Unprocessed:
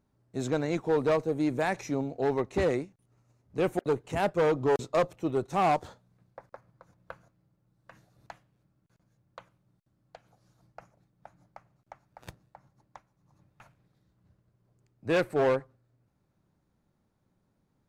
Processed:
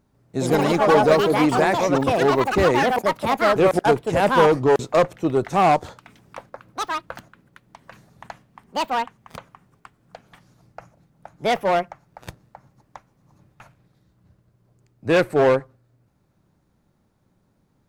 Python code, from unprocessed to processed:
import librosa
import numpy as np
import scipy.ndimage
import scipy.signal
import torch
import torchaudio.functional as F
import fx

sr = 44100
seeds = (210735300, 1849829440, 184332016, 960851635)

y = fx.echo_pitch(x, sr, ms=146, semitones=5, count=3, db_per_echo=-3.0)
y = y * 10.0 ** (8.5 / 20.0)